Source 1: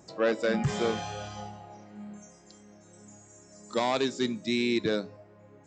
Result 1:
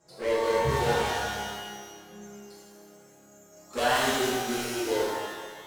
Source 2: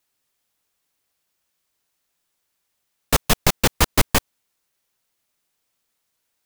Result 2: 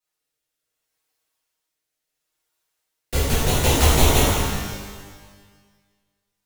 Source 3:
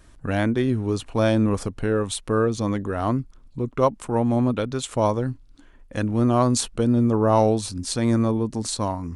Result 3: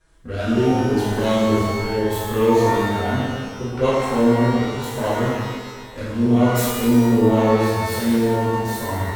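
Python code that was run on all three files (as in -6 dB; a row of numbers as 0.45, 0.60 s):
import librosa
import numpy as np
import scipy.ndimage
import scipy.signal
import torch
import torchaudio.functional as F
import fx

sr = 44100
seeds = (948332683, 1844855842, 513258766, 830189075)

y = fx.self_delay(x, sr, depth_ms=0.27)
y = fx.peak_eq(y, sr, hz=180.0, db=-7.5, octaves=0.62)
y = fx.leveller(y, sr, passes=1)
y = fx.rotary(y, sr, hz=0.7)
y = fx.hum_notches(y, sr, base_hz=50, count=7)
y = fx.env_flanger(y, sr, rest_ms=6.4, full_db=-17.0)
y = fx.peak_eq(y, sr, hz=75.0, db=10.0, octaves=0.25)
y = fx.rev_shimmer(y, sr, seeds[0], rt60_s=1.5, semitones=12, shimmer_db=-8, drr_db=-9.5)
y = y * 10.0 ** (-5.0 / 20.0)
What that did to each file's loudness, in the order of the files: +1.5, +1.0, +3.5 LU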